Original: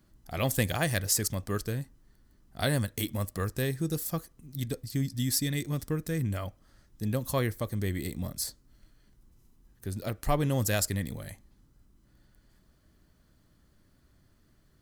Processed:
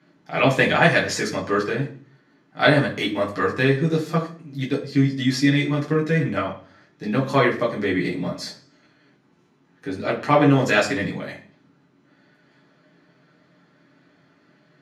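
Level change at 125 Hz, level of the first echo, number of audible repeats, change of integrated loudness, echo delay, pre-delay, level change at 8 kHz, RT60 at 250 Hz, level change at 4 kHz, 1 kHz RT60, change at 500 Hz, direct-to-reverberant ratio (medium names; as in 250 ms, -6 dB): +6.0 dB, no echo, no echo, +10.0 dB, no echo, 6 ms, -4.5 dB, 0.60 s, +8.5 dB, 0.35 s, +13.0 dB, -4.5 dB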